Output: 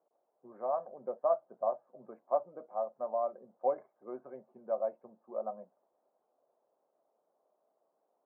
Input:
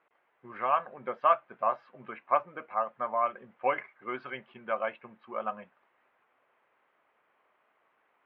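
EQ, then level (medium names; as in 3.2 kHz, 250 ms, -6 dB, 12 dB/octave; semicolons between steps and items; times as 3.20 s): high-pass 150 Hz 24 dB/octave; four-pole ladder low-pass 750 Hz, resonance 50%; +3.0 dB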